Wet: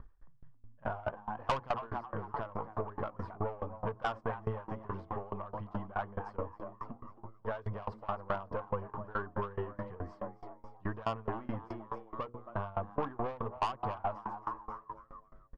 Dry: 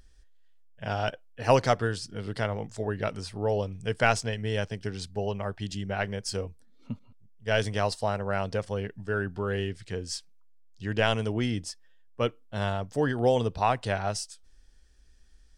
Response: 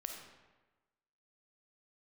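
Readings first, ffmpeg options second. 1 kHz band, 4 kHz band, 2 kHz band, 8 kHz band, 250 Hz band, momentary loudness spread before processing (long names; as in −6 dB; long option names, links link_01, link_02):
−5.0 dB, −17.5 dB, −13.0 dB, below −25 dB, −10.0 dB, 12 LU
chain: -filter_complex "[0:a]aeval=exprs='if(lt(val(0),0),0.447*val(0),val(0))':channel_layout=same,asplit=2[link_01][link_02];[link_02]acrusher=bits=2:mix=0:aa=0.5,volume=-11dB[link_03];[link_01][link_03]amix=inputs=2:normalize=0,aphaser=in_gain=1:out_gain=1:delay=3.7:decay=0.31:speed=1.8:type=sinusoidal,asplit=6[link_04][link_05][link_06][link_07][link_08][link_09];[link_05]adelay=271,afreqshift=110,volume=-12dB[link_10];[link_06]adelay=542,afreqshift=220,volume=-18.4dB[link_11];[link_07]adelay=813,afreqshift=330,volume=-24.8dB[link_12];[link_08]adelay=1084,afreqshift=440,volume=-31.1dB[link_13];[link_09]adelay=1355,afreqshift=550,volume=-37.5dB[link_14];[link_04][link_10][link_11][link_12][link_13][link_14]amix=inputs=6:normalize=0,acontrast=74,lowpass=frequency=1100:width_type=q:width=5.2,bandreject=frequency=60:width_type=h:width=6,bandreject=frequency=120:width_type=h:width=6,bandreject=frequency=180:width_type=h:width=6,bandreject=frequency=240:width_type=h:width=6,bandreject=frequency=300:width_type=h:width=6,bandreject=frequency=360:width_type=h:width=6,bandreject=frequency=420:width_type=h:width=6,bandreject=frequency=480:width_type=h:width=6,asoftclip=type=tanh:threshold=-12dB,acompressor=threshold=-27dB:ratio=4,aeval=exprs='val(0)*pow(10,-24*if(lt(mod(4.7*n/s,1),2*abs(4.7)/1000),1-mod(4.7*n/s,1)/(2*abs(4.7)/1000),(mod(4.7*n/s,1)-2*abs(4.7)/1000)/(1-2*abs(4.7)/1000))/20)':channel_layout=same,volume=-1dB"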